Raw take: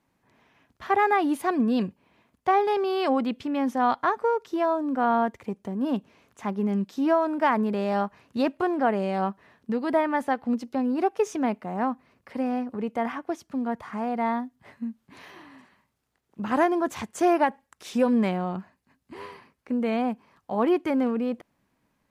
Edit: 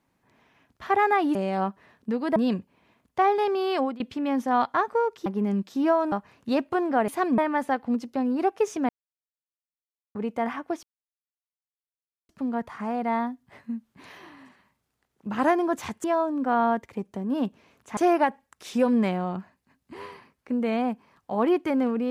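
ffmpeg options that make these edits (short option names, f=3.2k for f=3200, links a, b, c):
-filter_complex "[0:a]asplit=13[a][b][c][d][e][f][g][h][i][j][k][l][m];[a]atrim=end=1.352[n];[b]atrim=start=8.958:end=9.972[o];[c]atrim=start=1.648:end=3.29,asetpts=PTS-STARTPTS,afade=t=out:st=1.322:d=0.32:c=qsin:silence=0.0794328[p];[d]atrim=start=3.29:end=4.552,asetpts=PTS-STARTPTS,afade=t=in:d=0.004:c=hsin:silence=0.0794328[q];[e]atrim=start=6.478:end=7.342[r];[f]atrim=start=7.998:end=8.962[s];[g]atrim=start=1.348:end=1.652[t];[h]atrim=start=9.968:end=11.48,asetpts=PTS-STARTPTS,afade=t=out:st=1.508:d=0.004:c=hsin[u];[i]atrim=start=11.48:end=12.74,asetpts=PTS-STARTPTS,volume=0[v];[j]atrim=start=12.74:end=13.42,asetpts=PTS-STARTPTS,afade=t=in:d=0.004:c=hsin,afade=t=out:st=0.676:d=0.004:c=hsin,apad=pad_dur=1.46[w];[k]atrim=start=13.42:end=17.172,asetpts=PTS-STARTPTS,afade=t=in:d=0.004:c=hsin[x];[l]atrim=start=4.548:end=6.482[y];[m]atrim=start=17.168[z];[n][o]acrossfade=d=0.004:c1=hsin:c2=hsin[aa];[p][q]concat=n=2:v=0:a=1[ab];[aa][ab]acrossfade=d=0.004:c1=hsin:c2=hsin[ac];[ac][r]acrossfade=d=0.004:c1=hsin:c2=hsin[ad];[ad][s]acrossfade=d=0.004:c1=hsin:c2=hsin[ae];[ae][t]acrossfade=d=0.004:c1=hsin:c2=hsin[af];[u][v][w][x]concat=n=4:v=0:a=1[ag];[af][ag]acrossfade=d=0.004:c1=hsin:c2=hsin[ah];[ah][y]acrossfade=d=0.004:c1=hsin:c2=hsin[ai];[ai][z]acrossfade=d=0.004:c1=hsin:c2=hsin"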